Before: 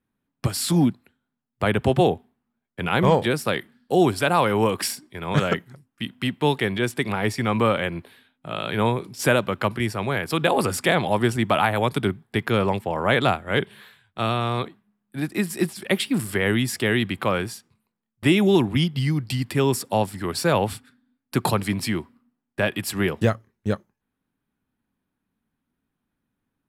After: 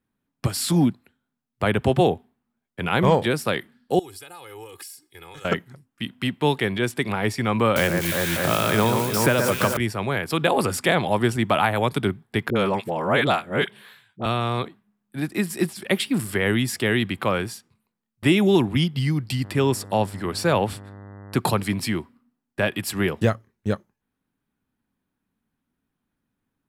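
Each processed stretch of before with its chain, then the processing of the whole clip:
3.99–5.45 s: pre-emphasis filter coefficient 0.8 + compression 8:1, threshold -39 dBFS + comb 2.4 ms, depth 84%
7.76–9.77 s: zero-crossing glitches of -22 dBFS + echo whose repeats swap between lows and highs 120 ms, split 2 kHz, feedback 76%, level -4.5 dB + three bands compressed up and down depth 100%
12.50–14.26 s: high-pass 120 Hz 24 dB/octave + phase dispersion highs, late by 55 ms, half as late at 620 Hz
19.43–21.38 s: treble shelf 9.9 kHz -5.5 dB + mains buzz 100 Hz, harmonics 20, -41 dBFS -6 dB/octave
whole clip: none

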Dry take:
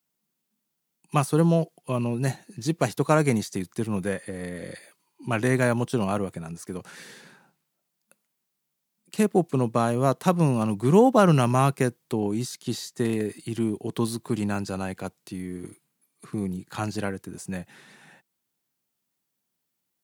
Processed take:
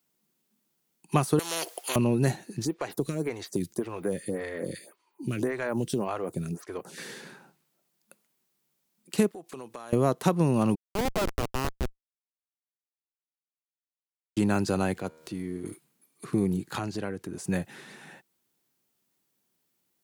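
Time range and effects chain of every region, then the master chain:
1.39–1.96 s: high-pass 580 Hz 24 dB/octave + spectrum-flattening compressor 4:1
2.65–6.98 s: compression, threshold -27 dBFS + modulation noise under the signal 34 dB + lamp-driven phase shifter 1.8 Hz
9.31–9.93 s: high-pass 1.2 kHz 6 dB/octave + compression, threshold -43 dBFS
10.75–14.37 s: high-pass 610 Hz 24 dB/octave + Schmitt trigger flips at -20.5 dBFS
14.94–15.66 s: peaking EQ 12 kHz -4.5 dB 1 oct + upward compressor, threshold -37 dBFS + feedback comb 79 Hz, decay 1.8 s, mix 50%
16.78–17.44 s: treble shelf 7.7 kHz -7.5 dB + compression 2:1, threshold -40 dBFS
whole clip: peaking EQ 370 Hz +4.5 dB 0.82 oct; compression 5:1, threshold -23 dBFS; trim +3.5 dB

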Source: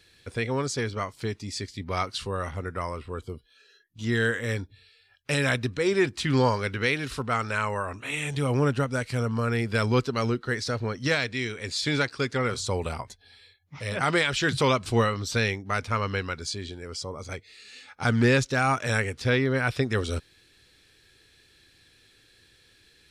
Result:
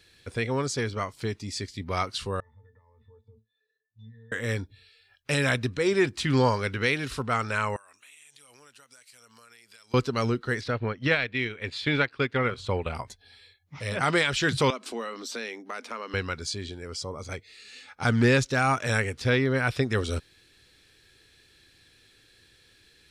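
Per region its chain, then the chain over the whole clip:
2.40–4.32 s: peaking EQ 310 Hz -11.5 dB 0.85 oct + compression 12:1, threshold -41 dBFS + pitch-class resonator A, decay 0.18 s
7.76–9.94 s: differentiator + compression 12:1, threshold -49 dBFS
10.61–12.95 s: transient shaper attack +1 dB, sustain -8 dB + resonant high shelf 4.3 kHz -13 dB, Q 1.5
14.70–16.14 s: elliptic high-pass 230 Hz + compression 2.5:1, threshold -34 dBFS
whole clip: none

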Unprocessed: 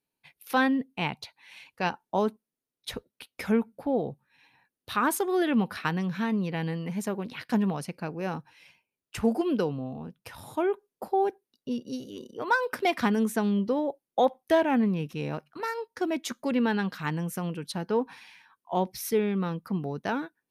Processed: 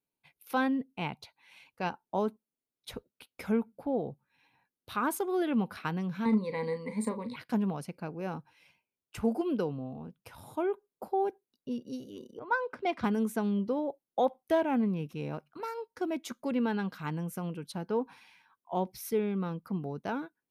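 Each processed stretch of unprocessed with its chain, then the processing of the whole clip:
6.25–7.36 s: rippled EQ curve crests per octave 0.97, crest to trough 18 dB + hard clipper -16 dBFS + doubling 37 ms -10.5 dB
12.39–13.04 s: low-pass 6.1 kHz + treble shelf 3.5 kHz -5.5 dB + three bands expanded up and down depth 70%
whole clip: peaking EQ 4.8 kHz -4.5 dB 2.7 oct; band-stop 1.8 kHz, Q 10; trim -4 dB

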